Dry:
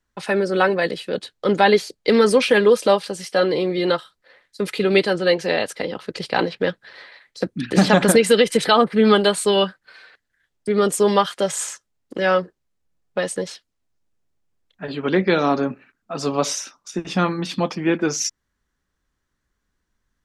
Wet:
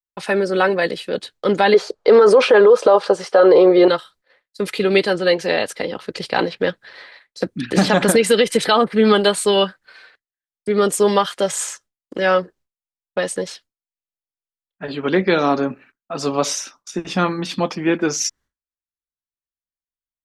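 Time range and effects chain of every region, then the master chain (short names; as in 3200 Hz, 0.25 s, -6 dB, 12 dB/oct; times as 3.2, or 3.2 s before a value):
1.74–3.88 LPF 6600 Hz + band shelf 740 Hz +13.5 dB 2.3 oct
whole clip: expander -44 dBFS; bell 160 Hz -2.5 dB 1.1 oct; maximiser +5 dB; gain -3 dB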